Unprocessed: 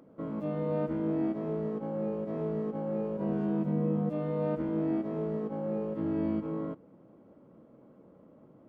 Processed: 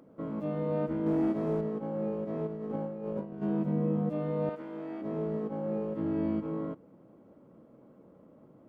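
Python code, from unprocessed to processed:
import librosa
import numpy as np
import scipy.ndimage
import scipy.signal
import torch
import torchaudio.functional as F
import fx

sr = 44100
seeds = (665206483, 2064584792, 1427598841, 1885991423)

y = fx.leveller(x, sr, passes=1, at=(1.06, 1.61))
y = fx.over_compress(y, sr, threshold_db=-36.0, ratio=-0.5, at=(2.46, 3.41), fade=0.02)
y = fx.highpass(y, sr, hz=950.0, slope=6, at=(4.49, 5.02))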